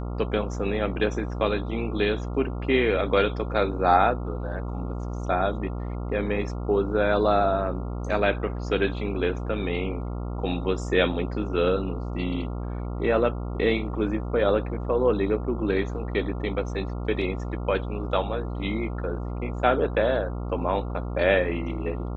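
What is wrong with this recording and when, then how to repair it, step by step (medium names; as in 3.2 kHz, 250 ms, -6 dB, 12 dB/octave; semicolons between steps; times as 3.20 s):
buzz 60 Hz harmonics 23 -31 dBFS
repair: de-hum 60 Hz, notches 23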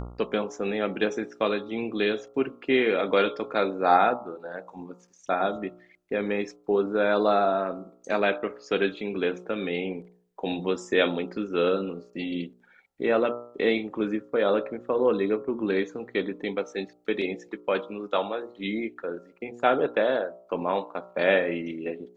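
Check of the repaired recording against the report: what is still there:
nothing left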